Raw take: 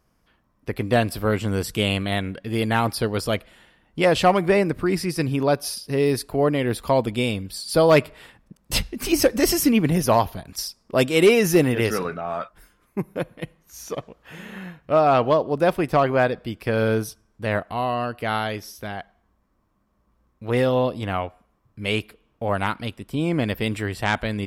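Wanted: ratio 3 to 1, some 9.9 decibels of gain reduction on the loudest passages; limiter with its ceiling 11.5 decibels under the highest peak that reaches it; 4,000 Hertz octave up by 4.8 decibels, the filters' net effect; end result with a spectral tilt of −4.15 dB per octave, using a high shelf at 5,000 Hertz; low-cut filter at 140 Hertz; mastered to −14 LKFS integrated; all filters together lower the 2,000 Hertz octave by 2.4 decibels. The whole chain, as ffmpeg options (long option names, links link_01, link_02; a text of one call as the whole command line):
ffmpeg -i in.wav -af "highpass=140,equalizer=frequency=2000:width_type=o:gain=-6,equalizer=frequency=4000:width_type=o:gain=5,highshelf=frequency=5000:gain=7,acompressor=threshold=-25dB:ratio=3,volume=19.5dB,alimiter=limit=-3dB:level=0:latency=1" out.wav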